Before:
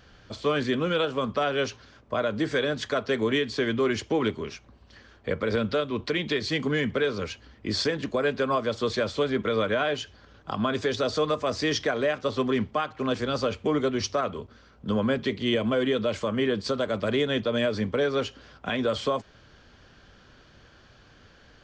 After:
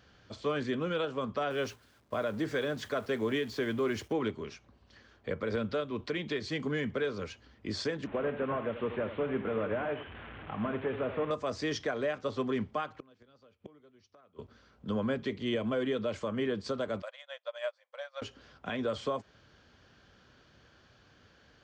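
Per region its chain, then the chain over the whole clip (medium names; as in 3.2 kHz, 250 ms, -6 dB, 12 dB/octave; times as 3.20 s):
1.50–4.13 s: jump at every zero crossing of -41 dBFS + expander -36 dBFS
8.07–11.31 s: one-bit delta coder 16 kbps, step -33.5 dBFS + delay 83 ms -11 dB
12.99–14.39 s: inverted gate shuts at -22 dBFS, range -28 dB + distance through air 63 m
17.02–18.22 s: brick-wall FIR high-pass 500 Hz + upward expansion 2.5:1, over -42 dBFS
whole clip: high-pass 59 Hz; dynamic bell 4.1 kHz, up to -4 dB, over -43 dBFS, Q 0.78; trim -6.5 dB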